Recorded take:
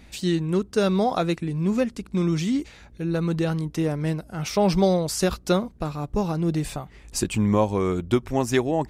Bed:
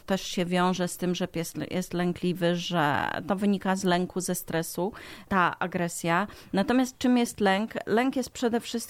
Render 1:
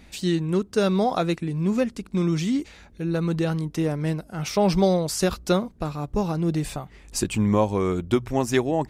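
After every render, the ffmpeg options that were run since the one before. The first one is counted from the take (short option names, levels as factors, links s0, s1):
-af "bandreject=f=60:t=h:w=4,bandreject=f=120:t=h:w=4"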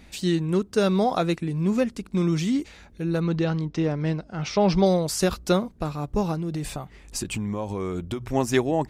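-filter_complex "[0:a]asettb=1/sr,asplit=3[s0][s1][s2];[s0]atrim=end=3.204[s3];[s1]atrim=start=3.2:end=4.86,asetpts=PTS-STARTPTS,afade=t=in:d=0.004:c=qsin,afade=t=out:st=1.656:d=0.004:c=qsin,lowpass=f=5800:w=0.5412,lowpass=f=5800:w=1.3066[s4];[s2]atrim=start=4.856[s5];[s3][s4]acrossfade=d=0.004:c1=hsin:c2=qsin[s6];[s6][s5]acrossfade=d=0.004:c1=qsin:c2=hsin,asettb=1/sr,asplit=3[s7][s8][s9];[s7]atrim=end=6.344[s10];[s8]atrim=start=6.34:end=8.21,asetpts=PTS-STARTPTS,afade=t=in:d=0.004:c=qsin,afade=t=out:st=1.866:d=0.004:c=qsin,acompressor=threshold=0.0562:ratio=6:attack=3.2:release=140:knee=1:detection=peak[s11];[s9]atrim=start=8.206[s12];[s10][s11]acrossfade=d=0.004:c1=hsin:c2=qsin[s13];[s13][s12]acrossfade=d=0.004:c1=qsin:c2=hsin"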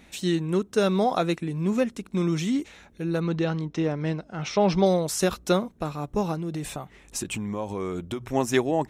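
-af "lowshelf=f=98:g=-10.5,bandreject=f=4700:w=7.3"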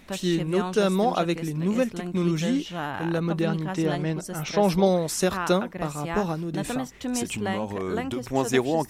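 -filter_complex "[1:a]volume=0.473[s0];[0:a][s0]amix=inputs=2:normalize=0"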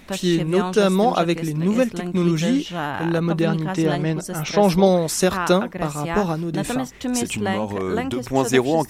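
-af "volume=1.78"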